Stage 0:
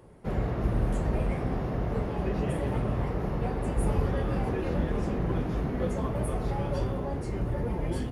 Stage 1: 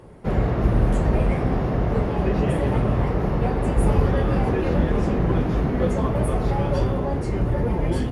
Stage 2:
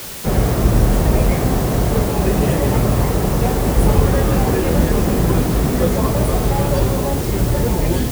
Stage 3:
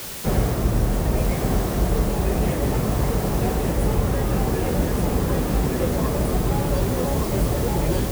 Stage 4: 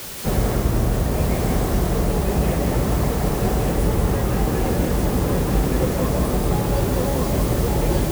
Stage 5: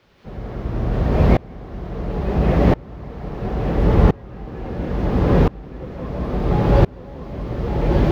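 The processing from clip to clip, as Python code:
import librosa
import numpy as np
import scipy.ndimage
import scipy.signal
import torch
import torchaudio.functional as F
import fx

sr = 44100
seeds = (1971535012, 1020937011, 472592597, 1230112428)

y1 = fx.high_shelf(x, sr, hz=9100.0, db=-7.5)
y1 = y1 * librosa.db_to_amplitude(8.0)
y2 = fx.quant_dither(y1, sr, seeds[0], bits=6, dither='triangular')
y2 = y2 * librosa.db_to_amplitude(5.0)
y3 = y2 + 10.0 ** (-3.5 / 20.0) * np.pad(y2, (int(1169 * sr / 1000.0), 0))[:len(y2)]
y3 = fx.rider(y3, sr, range_db=10, speed_s=0.5)
y3 = y3 * librosa.db_to_amplitude(-7.0)
y4 = y3 + 10.0 ** (-3.5 / 20.0) * np.pad(y3, (int(181 * sr / 1000.0), 0))[:len(y3)]
y5 = fx.air_absorb(y4, sr, metres=280.0)
y5 = fx.tremolo_decay(y5, sr, direction='swelling', hz=0.73, depth_db=28)
y5 = y5 * librosa.db_to_amplitude(9.0)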